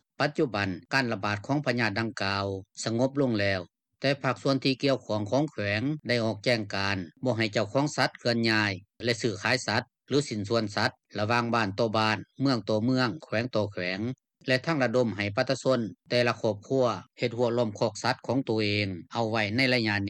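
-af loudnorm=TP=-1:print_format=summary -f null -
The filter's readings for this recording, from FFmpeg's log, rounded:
Input Integrated:    -27.8 LUFS
Input True Peak:     -10.6 dBTP
Input LRA:             0.9 LU
Input Threshold:     -37.8 LUFS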